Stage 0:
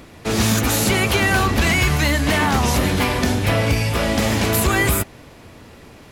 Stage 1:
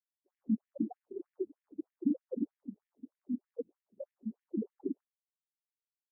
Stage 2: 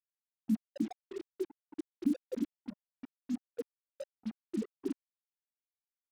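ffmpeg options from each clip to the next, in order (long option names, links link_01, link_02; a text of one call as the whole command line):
ffmpeg -i in.wav -af "acrusher=samples=39:mix=1:aa=0.000001,afftfilt=real='re*gte(hypot(re,im),0.708)':imag='im*gte(hypot(re,im),0.708)':win_size=1024:overlap=0.75,afftfilt=real='re*between(b*sr/1024,260*pow(2500/260,0.5+0.5*sin(2*PI*3.2*pts/sr))/1.41,260*pow(2500/260,0.5+0.5*sin(2*PI*3.2*pts/sr))*1.41)':imag='im*between(b*sr/1024,260*pow(2500/260,0.5+0.5*sin(2*PI*3.2*pts/sr))/1.41,260*pow(2500/260,0.5+0.5*sin(2*PI*3.2*pts/sr))*1.41)':win_size=1024:overlap=0.75,volume=-4dB" out.wav
ffmpeg -i in.wav -af "acrusher=bits=7:mix=0:aa=0.5" out.wav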